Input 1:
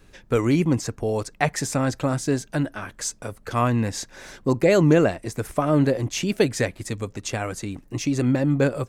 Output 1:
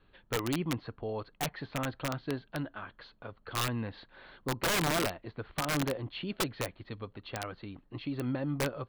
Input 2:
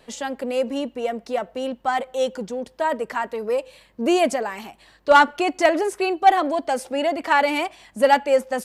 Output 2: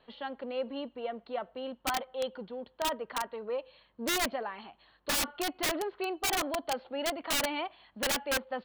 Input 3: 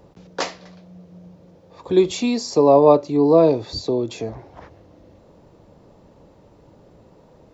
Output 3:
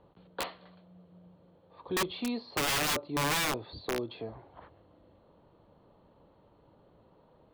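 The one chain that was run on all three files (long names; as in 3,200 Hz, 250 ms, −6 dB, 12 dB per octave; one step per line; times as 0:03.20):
Chebyshev low-pass with heavy ripple 4,400 Hz, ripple 6 dB
wrap-around overflow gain 17 dB
level −7 dB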